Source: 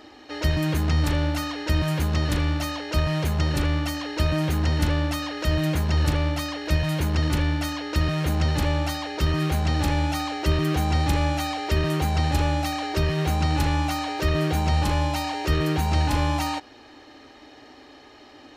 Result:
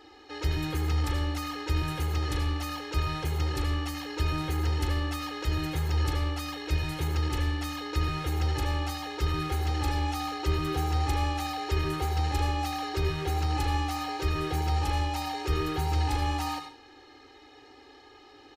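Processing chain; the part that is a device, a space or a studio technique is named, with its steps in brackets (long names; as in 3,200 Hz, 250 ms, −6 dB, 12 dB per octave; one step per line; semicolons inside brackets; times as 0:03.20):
microphone above a desk (comb filter 2.4 ms, depth 78%; convolution reverb RT60 0.35 s, pre-delay 74 ms, DRR 6.5 dB)
level −8.5 dB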